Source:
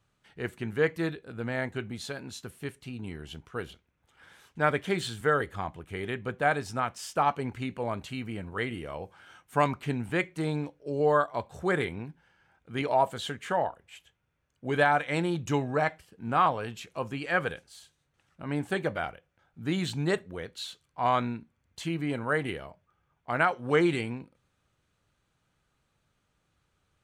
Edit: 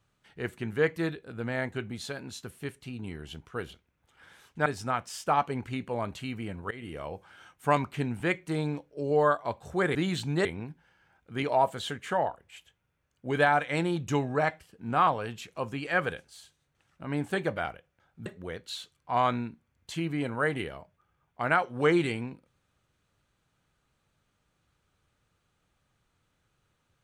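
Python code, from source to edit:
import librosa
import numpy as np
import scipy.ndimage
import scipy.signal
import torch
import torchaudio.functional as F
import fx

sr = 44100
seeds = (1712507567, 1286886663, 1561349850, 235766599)

y = fx.edit(x, sr, fx.cut(start_s=4.66, length_s=1.89),
    fx.fade_in_from(start_s=8.6, length_s=0.25, floor_db=-20.0),
    fx.move(start_s=19.65, length_s=0.5, to_s=11.84), tone=tone)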